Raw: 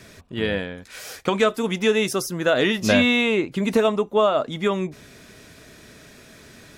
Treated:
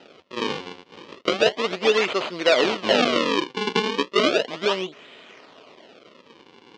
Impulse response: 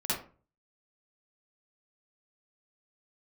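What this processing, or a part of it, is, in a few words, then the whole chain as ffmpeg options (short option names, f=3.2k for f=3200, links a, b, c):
circuit-bent sampling toy: -af "acrusher=samples=39:mix=1:aa=0.000001:lfo=1:lforange=62.4:lforate=0.34,highpass=450,equalizer=f=820:t=q:w=4:g=-5,equalizer=f=1.6k:t=q:w=4:g=-7,equalizer=f=3k:t=q:w=4:g=5,lowpass=f=5k:w=0.5412,lowpass=f=5k:w=1.3066,volume=4dB"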